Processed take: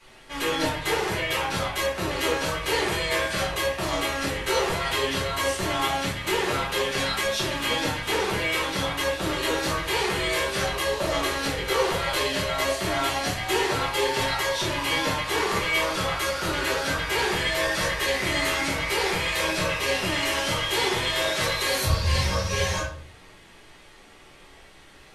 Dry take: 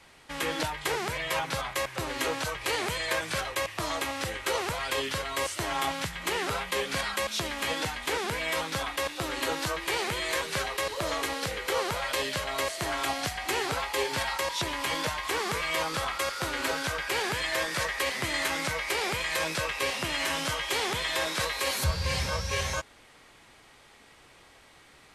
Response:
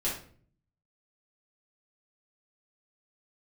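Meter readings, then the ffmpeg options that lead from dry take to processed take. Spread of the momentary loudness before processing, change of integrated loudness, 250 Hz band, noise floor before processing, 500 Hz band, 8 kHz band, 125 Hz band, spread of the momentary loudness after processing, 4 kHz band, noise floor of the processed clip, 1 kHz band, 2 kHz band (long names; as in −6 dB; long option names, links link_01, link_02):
3 LU, +5.0 dB, +7.0 dB, −56 dBFS, +6.0 dB, +3.0 dB, +6.5 dB, 3 LU, +5.0 dB, −50 dBFS, +4.0 dB, +4.5 dB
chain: -filter_complex "[0:a]flanger=delay=7.9:depth=6.5:regen=-43:speed=0.14:shape=sinusoidal[link_01];[1:a]atrim=start_sample=2205[link_02];[link_01][link_02]afir=irnorm=-1:irlink=0,volume=2.5dB"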